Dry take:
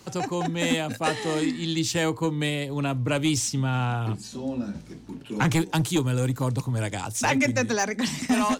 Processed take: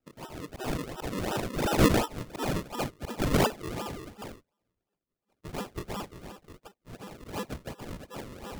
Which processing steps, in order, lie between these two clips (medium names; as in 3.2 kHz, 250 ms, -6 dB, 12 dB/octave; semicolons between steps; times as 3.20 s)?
partials quantised in pitch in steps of 6 st; Doppler pass-by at 2.20 s, 12 m/s, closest 11 m; high-pass 1.1 kHz 24 dB/octave; treble shelf 5.5 kHz -7.5 dB; slow attack 146 ms; decimation with a swept rate 39×, swing 100% 2.8 Hz; gate -48 dBFS, range -28 dB